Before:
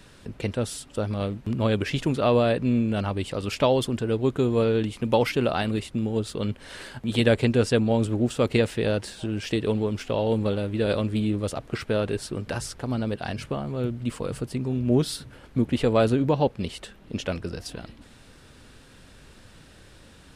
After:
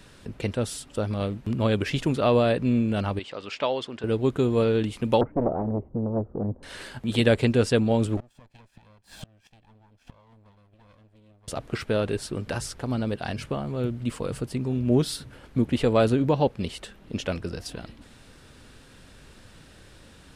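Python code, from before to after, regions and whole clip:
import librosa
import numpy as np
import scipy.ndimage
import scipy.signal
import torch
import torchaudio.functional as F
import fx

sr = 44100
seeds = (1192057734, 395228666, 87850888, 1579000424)

y = fx.chain(x, sr, fx.highpass(hz=800.0, slope=6),
    fx.air_absorb(metres=130.0), at=(3.19, 4.04))
y = fx.chain(y, sr, fx.cheby2_lowpass(hz=3600.0, order=4, stop_db=70),
    fx.doppler_dist(depth_ms=0.94), at=(5.21, 6.63))
y = fx.chain(y, sr, fx.lower_of_two(delay_ms=1.2),
    fx.high_shelf(hz=9000.0, db=-4.0),
    fx.gate_flip(shuts_db=-25.0, range_db=-29), at=(8.17, 11.48))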